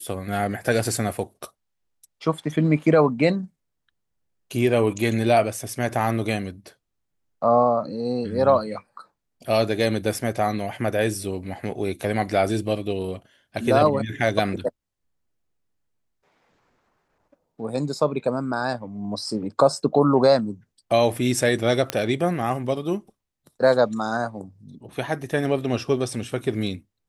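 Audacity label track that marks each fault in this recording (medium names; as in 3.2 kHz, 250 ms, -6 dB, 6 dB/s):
21.900000	21.900000	pop -7 dBFS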